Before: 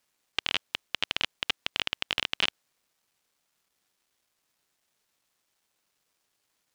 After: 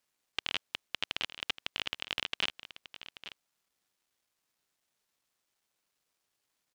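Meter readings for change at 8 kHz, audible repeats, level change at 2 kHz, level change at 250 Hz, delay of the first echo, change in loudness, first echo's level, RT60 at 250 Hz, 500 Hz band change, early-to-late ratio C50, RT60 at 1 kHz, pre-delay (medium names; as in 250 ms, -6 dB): -5.5 dB, 1, -5.5 dB, -5.5 dB, 834 ms, -5.5 dB, -14.0 dB, no reverb, -5.5 dB, no reverb, no reverb, no reverb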